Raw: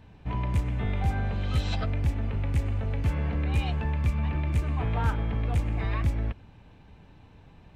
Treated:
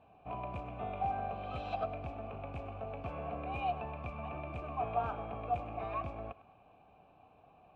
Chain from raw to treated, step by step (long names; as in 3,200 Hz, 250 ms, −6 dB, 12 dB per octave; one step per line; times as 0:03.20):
formant filter a
spectral tilt −2 dB per octave
on a send: feedback echo with a high-pass in the loop 103 ms, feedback 53%, level −17 dB
on the sum: level +7 dB